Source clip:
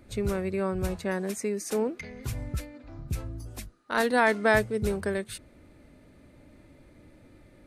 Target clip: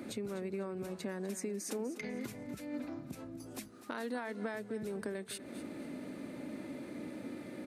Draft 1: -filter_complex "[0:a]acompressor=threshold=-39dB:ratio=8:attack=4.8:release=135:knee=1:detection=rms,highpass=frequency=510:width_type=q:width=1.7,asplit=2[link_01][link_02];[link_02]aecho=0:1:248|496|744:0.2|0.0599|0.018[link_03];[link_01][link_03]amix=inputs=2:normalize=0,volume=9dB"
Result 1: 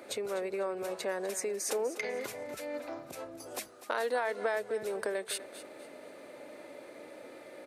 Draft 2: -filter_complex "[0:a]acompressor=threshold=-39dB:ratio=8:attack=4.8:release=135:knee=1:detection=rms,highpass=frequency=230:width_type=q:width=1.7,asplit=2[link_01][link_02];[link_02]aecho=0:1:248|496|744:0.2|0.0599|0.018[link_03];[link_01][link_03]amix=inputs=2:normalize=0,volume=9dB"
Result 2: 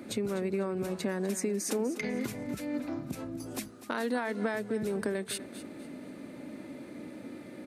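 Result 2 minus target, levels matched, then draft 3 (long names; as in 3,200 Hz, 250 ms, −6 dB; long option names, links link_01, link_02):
downward compressor: peak gain reduction −7.5 dB
-filter_complex "[0:a]acompressor=threshold=-47.5dB:ratio=8:attack=4.8:release=135:knee=1:detection=rms,highpass=frequency=230:width_type=q:width=1.7,asplit=2[link_01][link_02];[link_02]aecho=0:1:248|496|744:0.2|0.0599|0.018[link_03];[link_01][link_03]amix=inputs=2:normalize=0,volume=9dB"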